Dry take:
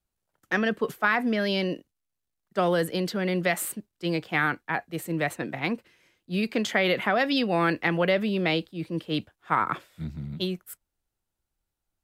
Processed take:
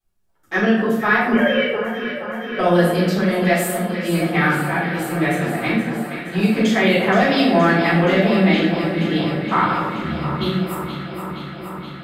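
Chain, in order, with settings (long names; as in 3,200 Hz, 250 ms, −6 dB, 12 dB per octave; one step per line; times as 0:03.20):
0:01.32–0:02.59: three sine waves on the formant tracks
delay that swaps between a low-pass and a high-pass 236 ms, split 1,500 Hz, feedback 87%, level −8.5 dB
rectangular room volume 170 cubic metres, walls mixed, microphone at 3.8 metres
level −5.5 dB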